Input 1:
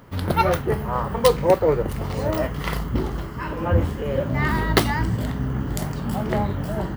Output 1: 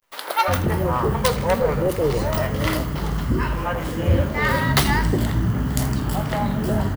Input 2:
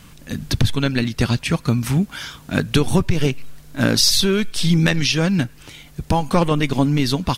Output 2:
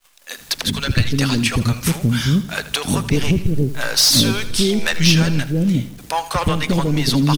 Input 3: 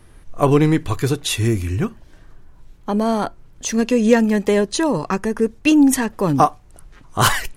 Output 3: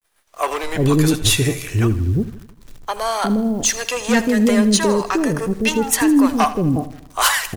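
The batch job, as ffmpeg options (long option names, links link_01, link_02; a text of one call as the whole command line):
ffmpeg -i in.wav -filter_complex "[0:a]agate=range=-33dB:threshold=-36dB:ratio=3:detection=peak,highshelf=frequency=2900:gain=4.5,acrossover=split=1200[link_01][link_02];[link_02]dynaudnorm=framelen=320:gausssize=11:maxgain=4dB[link_03];[link_01][link_03]amix=inputs=2:normalize=0,asoftclip=type=tanh:threshold=-12dB,acrossover=split=520[link_04][link_05];[link_04]adelay=360[link_06];[link_06][link_05]amix=inputs=2:normalize=0,acrusher=bits=9:dc=4:mix=0:aa=0.000001,asplit=2[link_07][link_08];[link_08]aecho=0:1:80|160|240|320|400:0.168|0.0907|0.049|0.0264|0.0143[link_09];[link_07][link_09]amix=inputs=2:normalize=0,volume=3.5dB" out.wav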